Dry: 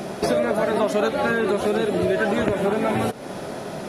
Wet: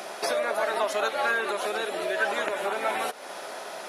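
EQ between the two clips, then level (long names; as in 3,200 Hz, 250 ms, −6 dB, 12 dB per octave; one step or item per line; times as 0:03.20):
high-pass filter 770 Hz 12 dB per octave
0.0 dB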